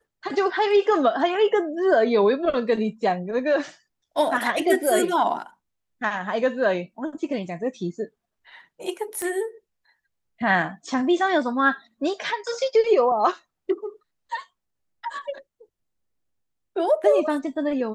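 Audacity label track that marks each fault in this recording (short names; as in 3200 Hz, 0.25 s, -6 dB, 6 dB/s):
9.220000	9.220000	pop -15 dBFS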